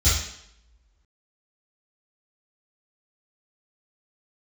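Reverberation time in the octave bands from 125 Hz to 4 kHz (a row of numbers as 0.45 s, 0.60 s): 0.50 s, 0.80 s, 0.80 s, 0.75 s, 0.75 s, 0.70 s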